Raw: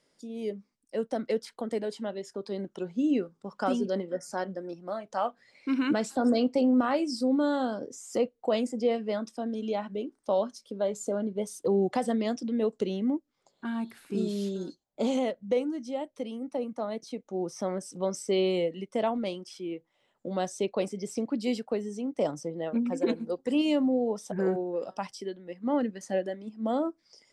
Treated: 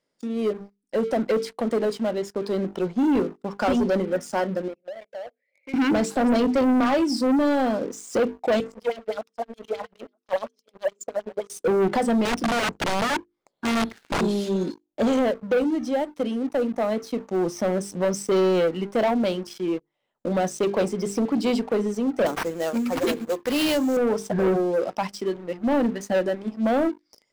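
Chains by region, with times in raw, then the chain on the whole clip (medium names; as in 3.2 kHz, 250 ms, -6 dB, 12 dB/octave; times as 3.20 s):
4.68–5.74 s: two resonant band-passes 1.1 kHz, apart 2 oct + compression, threshold -42 dBFS
8.60–11.50 s: self-modulated delay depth 0.066 ms + LFO band-pass sine 9.6 Hz 540–6900 Hz + delay 960 ms -24 dB
12.25–14.21 s: integer overflow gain 27.5 dB + decimation joined by straight lines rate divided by 3×
22.26–23.97 s: tilt EQ +3.5 dB/octave + sample-rate reducer 7.3 kHz, jitter 20%
whole clip: treble shelf 3 kHz -5.5 dB; hum notches 50/100/150/200/250/300/350/400/450 Hz; waveshaping leveller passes 3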